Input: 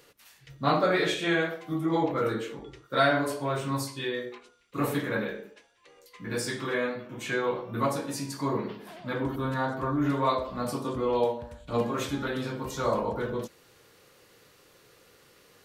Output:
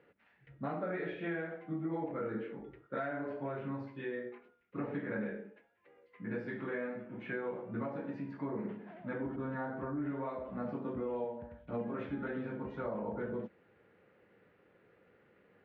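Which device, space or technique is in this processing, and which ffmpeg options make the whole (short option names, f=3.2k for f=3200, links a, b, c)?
bass amplifier: -af "acompressor=threshold=-28dB:ratio=6,highpass=71,equalizer=f=130:t=q:w=4:g=-4,equalizer=f=200:t=q:w=4:g=7,equalizer=f=1.1k:t=q:w=4:g=-8,lowpass=f=2.1k:w=0.5412,lowpass=f=2.1k:w=1.3066,volume=-5.5dB"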